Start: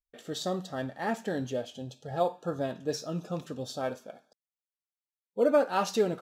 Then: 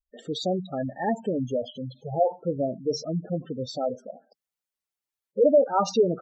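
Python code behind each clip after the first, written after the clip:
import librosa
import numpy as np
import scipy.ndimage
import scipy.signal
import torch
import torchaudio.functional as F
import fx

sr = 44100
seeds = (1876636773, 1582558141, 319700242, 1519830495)

y = fx.spec_gate(x, sr, threshold_db=-10, keep='strong')
y = F.gain(torch.from_numpy(y), 6.0).numpy()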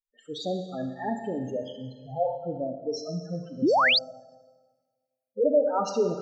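y = fx.noise_reduce_blind(x, sr, reduce_db=21)
y = fx.rev_schroeder(y, sr, rt60_s=1.5, comb_ms=27, drr_db=6.0)
y = fx.spec_paint(y, sr, seeds[0], shape='rise', start_s=3.62, length_s=0.37, low_hz=230.0, high_hz=5100.0, level_db=-16.0)
y = F.gain(torch.from_numpy(y), -4.5).numpy()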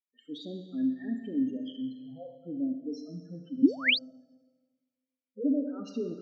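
y = fx.vowel_filter(x, sr, vowel='i')
y = F.gain(torch.from_numpy(y), 8.0).numpy()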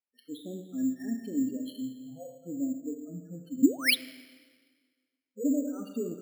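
y = fx.rev_plate(x, sr, seeds[1], rt60_s=1.7, hf_ratio=0.9, predelay_ms=0, drr_db=19.0)
y = np.repeat(scipy.signal.resample_poly(y, 1, 6), 6)[:len(y)]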